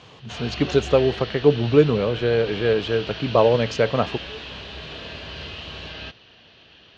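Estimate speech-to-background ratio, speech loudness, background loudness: 12.5 dB, -21.0 LUFS, -33.5 LUFS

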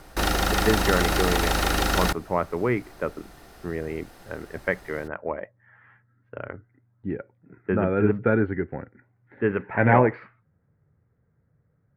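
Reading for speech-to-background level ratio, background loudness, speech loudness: -2.5 dB, -24.0 LUFS, -26.5 LUFS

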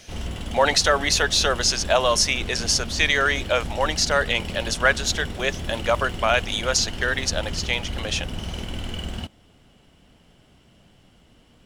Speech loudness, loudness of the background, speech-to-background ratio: -22.0 LUFS, -32.5 LUFS, 10.5 dB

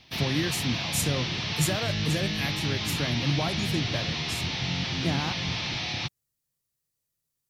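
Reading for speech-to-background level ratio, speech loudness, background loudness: -2.5 dB, -31.5 LUFS, -29.0 LUFS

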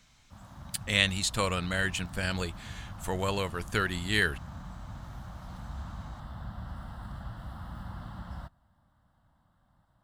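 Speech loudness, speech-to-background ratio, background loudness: -30.0 LUFS, 14.0 dB, -44.0 LUFS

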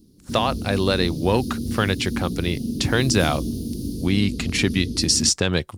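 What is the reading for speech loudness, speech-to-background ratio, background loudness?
-22.5 LUFS, 6.5 dB, -29.0 LUFS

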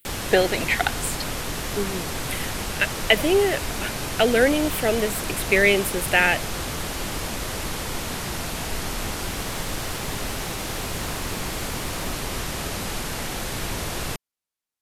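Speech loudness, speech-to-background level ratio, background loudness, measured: -22.5 LUFS, 6.5 dB, -29.0 LUFS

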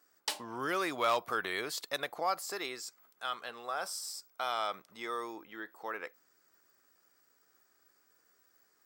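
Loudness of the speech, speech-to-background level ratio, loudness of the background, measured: -36.5 LUFS, 3.0 dB, -39.5 LUFS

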